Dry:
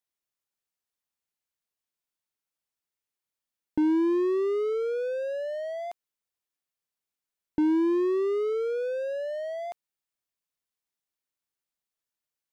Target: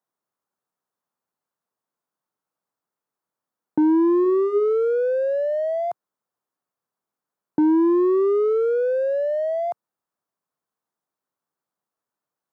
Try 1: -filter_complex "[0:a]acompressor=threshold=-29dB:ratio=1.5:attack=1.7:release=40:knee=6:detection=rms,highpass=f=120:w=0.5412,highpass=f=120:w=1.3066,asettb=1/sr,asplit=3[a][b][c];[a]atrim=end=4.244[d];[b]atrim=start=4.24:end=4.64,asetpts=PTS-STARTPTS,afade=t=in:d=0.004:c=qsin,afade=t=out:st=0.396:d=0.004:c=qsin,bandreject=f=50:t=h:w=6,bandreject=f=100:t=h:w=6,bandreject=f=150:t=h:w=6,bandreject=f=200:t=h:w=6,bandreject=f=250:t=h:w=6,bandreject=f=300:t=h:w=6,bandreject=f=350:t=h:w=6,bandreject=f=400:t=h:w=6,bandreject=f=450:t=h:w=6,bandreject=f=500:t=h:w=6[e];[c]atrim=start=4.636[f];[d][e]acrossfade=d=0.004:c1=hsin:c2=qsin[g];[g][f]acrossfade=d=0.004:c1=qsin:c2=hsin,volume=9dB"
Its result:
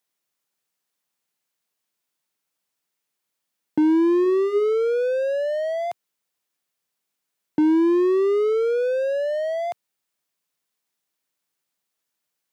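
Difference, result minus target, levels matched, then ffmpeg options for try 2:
4000 Hz band +14.5 dB
-filter_complex "[0:a]acompressor=threshold=-29dB:ratio=1.5:attack=1.7:release=40:knee=6:detection=rms,highpass=f=120:w=0.5412,highpass=f=120:w=1.3066,highshelf=f=1.7k:t=q:w=1.5:g=-11.5,asettb=1/sr,asplit=3[a][b][c];[a]atrim=end=4.244[d];[b]atrim=start=4.24:end=4.64,asetpts=PTS-STARTPTS,afade=t=in:d=0.004:c=qsin,afade=t=out:st=0.396:d=0.004:c=qsin,bandreject=f=50:t=h:w=6,bandreject=f=100:t=h:w=6,bandreject=f=150:t=h:w=6,bandreject=f=200:t=h:w=6,bandreject=f=250:t=h:w=6,bandreject=f=300:t=h:w=6,bandreject=f=350:t=h:w=6,bandreject=f=400:t=h:w=6,bandreject=f=450:t=h:w=6,bandreject=f=500:t=h:w=6[e];[c]atrim=start=4.636[f];[d][e]acrossfade=d=0.004:c1=hsin:c2=qsin[g];[g][f]acrossfade=d=0.004:c1=qsin:c2=hsin,volume=9dB"

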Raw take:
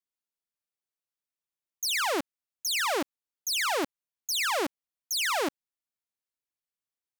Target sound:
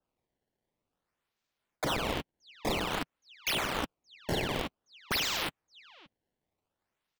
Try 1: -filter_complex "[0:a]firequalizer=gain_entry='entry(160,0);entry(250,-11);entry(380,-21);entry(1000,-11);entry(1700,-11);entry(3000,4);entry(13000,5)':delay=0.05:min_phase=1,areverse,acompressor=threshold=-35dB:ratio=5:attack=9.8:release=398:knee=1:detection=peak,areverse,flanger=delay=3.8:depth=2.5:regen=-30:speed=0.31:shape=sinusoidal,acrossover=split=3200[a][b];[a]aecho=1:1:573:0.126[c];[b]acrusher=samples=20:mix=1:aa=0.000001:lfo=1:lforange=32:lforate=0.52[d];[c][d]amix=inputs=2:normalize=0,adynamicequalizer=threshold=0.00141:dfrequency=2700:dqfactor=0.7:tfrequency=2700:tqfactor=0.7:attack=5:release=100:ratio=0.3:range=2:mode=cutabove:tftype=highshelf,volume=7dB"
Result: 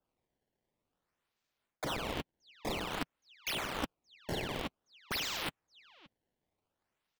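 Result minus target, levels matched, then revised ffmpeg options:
compressor: peak gain reduction +5.5 dB
-filter_complex "[0:a]firequalizer=gain_entry='entry(160,0);entry(250,-11);entry(380,-21);entry(1000,-11);entry(1700,-11);entry(3000,4);entry(13000,5)':delay=0.05:min_phase=1,areverse,acompressor=threshold=-28dB:ratio=5:attack=9.8:release=398:knee=1:detection=peak,areverse,flanger=delay=3.8:depth=2.5:regen=-30:speed=0.31:shape=sinusoidal,acrossover=split=3200[a][b];[a]aecho=1:1:573:0.126[c];[b]acrusher=samples=20:mix=1:aa=0.000001:lfo=1:lforange=32:lforate=0.52[d];[c][d]amix=inputs=2:normalize=0,adynamicequalizer=threshold=0.00141:dfrequency=2700:dqfactor=0.7:tfrequency=2700:tqfactor=0.7:attack=5:release=100:ratio=0.3:range=2:mode=cutabove:tftype=highshelf,volume=7dB"

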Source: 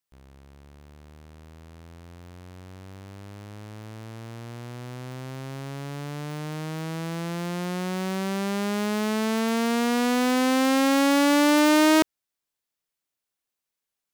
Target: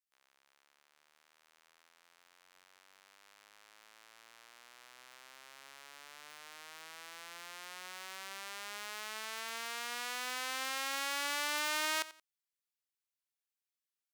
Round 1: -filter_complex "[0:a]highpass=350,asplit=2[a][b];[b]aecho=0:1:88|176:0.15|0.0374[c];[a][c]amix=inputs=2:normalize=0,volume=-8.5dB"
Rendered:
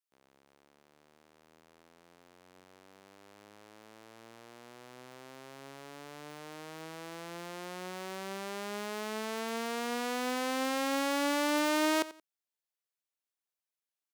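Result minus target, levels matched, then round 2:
250 Hz band +17.0 dB
-filter_complex "[0:a]highpass=1.3k,asplit=2[a][b];[b]aecho=0:1:88|176:0.15|0.0374[c];[a][c]amix=inputs=2:normalize=0,volume=-8.5dB"

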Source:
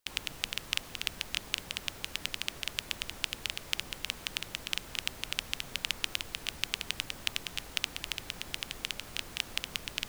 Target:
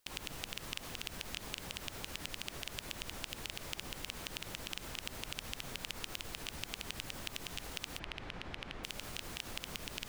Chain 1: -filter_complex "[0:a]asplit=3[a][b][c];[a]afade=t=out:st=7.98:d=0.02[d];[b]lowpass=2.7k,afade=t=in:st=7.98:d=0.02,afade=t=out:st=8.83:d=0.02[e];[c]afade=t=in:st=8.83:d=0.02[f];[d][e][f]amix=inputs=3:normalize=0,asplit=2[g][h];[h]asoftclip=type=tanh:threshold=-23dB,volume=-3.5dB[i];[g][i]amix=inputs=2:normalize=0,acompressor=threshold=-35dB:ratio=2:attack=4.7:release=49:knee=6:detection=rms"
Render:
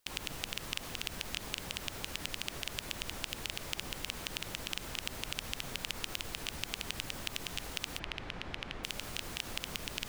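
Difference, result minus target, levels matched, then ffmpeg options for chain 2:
compressor: peak gain reduction -4 dB
-filter_complex "[0:a]asplit=3[a][b][c];[a]afade=t=out:st=7.98:d=0.02[d];[b]lowpass=2.7k,afade=t=in:st=7.98:d=0.02,afade=t=out:st=8.83:d=0.02[e];[c]afade=t=in:st=8.83:d=0.02[f];[d][e][f]amix=inputs=3:normalize=0,asplit=2[g][h];[h]asoftclip=type=tanh:threshold=-23dB,volume=-3.5dB[i];[g][i]amix=inputs=2:normalize=0,acompressor=threshold=-43.5dB:ratio=2:attack=4.7:release=49:knee=6:detection=rms"

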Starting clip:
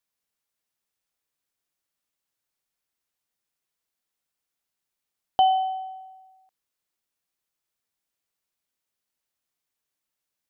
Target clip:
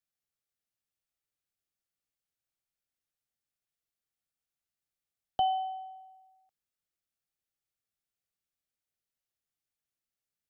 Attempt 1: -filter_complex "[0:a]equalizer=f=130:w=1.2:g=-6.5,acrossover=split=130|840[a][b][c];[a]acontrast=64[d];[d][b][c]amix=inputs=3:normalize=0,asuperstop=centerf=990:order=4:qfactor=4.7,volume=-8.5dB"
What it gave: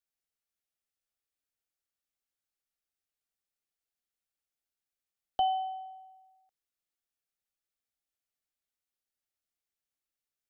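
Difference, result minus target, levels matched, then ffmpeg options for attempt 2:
125 Hz band -6.0 dB
-filter_complex "[0:a]equalizer=f=130:w=1.2:g=2.5,acrossover=split=130|840[a][b][c];[a]acontrast=64[d];[d][b][c]amix=inputs=3:normalize=0,asuperstop=centerf=990:order=4:qfactor=4.7,volume=-8.5dB"

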